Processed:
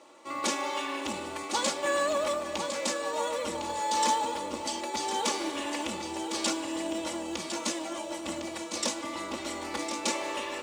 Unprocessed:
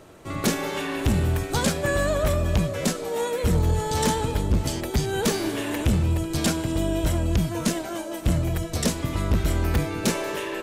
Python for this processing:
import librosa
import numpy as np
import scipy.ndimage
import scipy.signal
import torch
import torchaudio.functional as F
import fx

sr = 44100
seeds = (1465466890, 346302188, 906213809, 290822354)

p1 = fx.cabinet(x, sr, low_hz=460.0, low_slope=12, high_hz=8700.0, hz=(620.0, 1000.0, 1600.0), db=(-4, 5, -8))
p2 = p1 + 0.74 * np.pad(p1, (int(3.5 * sr / 1000.0), 0))[:len(p1)]
p3 = fx.echo_feedback(p2, sr, ms=1056, feedback_pct=37, wet_db=-8.0)
p4 = fx.quant_float(p3, sr, bits=2)
p5 = p3 + F.gain(torch.from_numpy(p4), -8.5).numpy()
y = F.gain(torch.from_numpy(p5), -6.5).numpy()